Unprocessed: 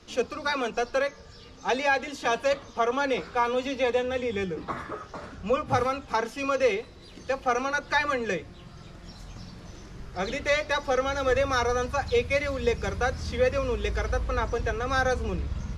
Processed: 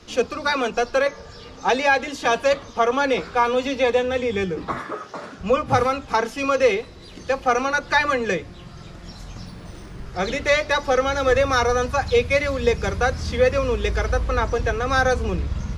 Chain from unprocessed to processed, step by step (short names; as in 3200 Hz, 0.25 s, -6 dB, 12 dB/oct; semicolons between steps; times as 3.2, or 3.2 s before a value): 1.06–1.69 bell 760 Hz +5 dB 2.4 oct; 4.79–5.4 HPF 190 Hz 12 dB/oct; 9.46–10.06 decimation joined by straight lines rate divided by 3×; gain +6 dB